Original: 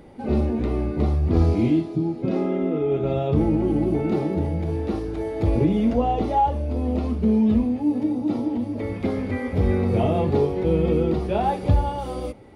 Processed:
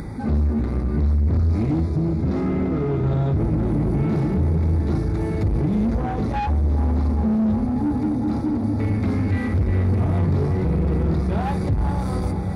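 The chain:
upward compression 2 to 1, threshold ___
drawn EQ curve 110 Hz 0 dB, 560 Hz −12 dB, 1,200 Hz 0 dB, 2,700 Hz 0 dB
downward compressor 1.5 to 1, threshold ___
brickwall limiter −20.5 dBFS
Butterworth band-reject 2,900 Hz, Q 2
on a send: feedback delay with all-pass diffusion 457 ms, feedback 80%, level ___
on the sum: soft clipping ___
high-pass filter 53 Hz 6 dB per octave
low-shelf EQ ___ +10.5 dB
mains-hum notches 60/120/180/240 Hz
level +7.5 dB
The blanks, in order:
−31 dBFS, −30 dBFS, −11 dB, −31 dBFS, 330 Hz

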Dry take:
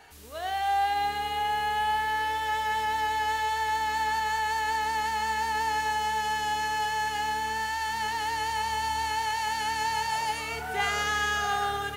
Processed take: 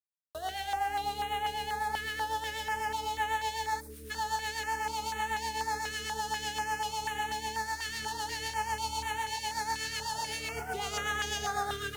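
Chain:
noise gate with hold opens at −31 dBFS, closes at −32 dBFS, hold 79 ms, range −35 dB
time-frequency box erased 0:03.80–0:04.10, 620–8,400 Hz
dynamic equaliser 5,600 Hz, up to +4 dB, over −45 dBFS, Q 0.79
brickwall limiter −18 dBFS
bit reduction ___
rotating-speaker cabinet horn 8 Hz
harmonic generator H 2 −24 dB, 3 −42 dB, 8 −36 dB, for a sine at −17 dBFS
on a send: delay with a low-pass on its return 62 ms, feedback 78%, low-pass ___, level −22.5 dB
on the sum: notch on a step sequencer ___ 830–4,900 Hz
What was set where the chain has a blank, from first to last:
8 bits, 580 Hz, 4.1 Hz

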